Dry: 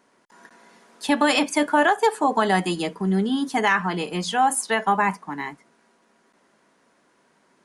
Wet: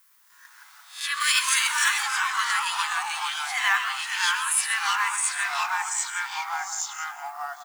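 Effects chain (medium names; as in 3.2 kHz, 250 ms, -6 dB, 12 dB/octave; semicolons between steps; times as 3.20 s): reverse spectral sustain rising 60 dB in 0.37 s; brick-wall FIR high-pass 980 Hz; tilt shelf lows -4 dB, about 1.5 kHz; feedback delay 131 ms, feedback 16%, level -11 dB; companded quantiser 6-bit; ever faster or slower copies 113 ms, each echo -2 st, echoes 3; 1.20–2.03 s: treble shelf 7.3 kHz +10.5 dB; added noise violet -55 dBFS; level rider gain up to 4 dB; trim -6 dB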